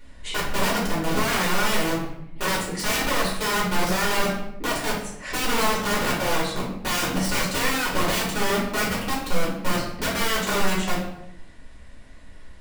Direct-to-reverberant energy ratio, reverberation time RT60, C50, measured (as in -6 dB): -7.0 dB, 0.80 s, 3.0 dB